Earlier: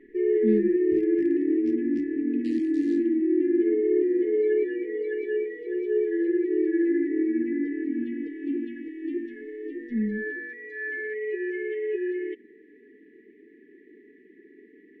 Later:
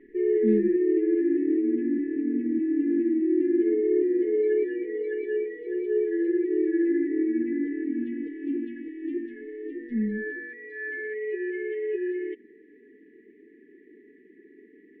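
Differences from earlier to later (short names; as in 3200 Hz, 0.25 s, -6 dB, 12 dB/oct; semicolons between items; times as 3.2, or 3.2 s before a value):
second sound: muted; master: add air absorption 200 m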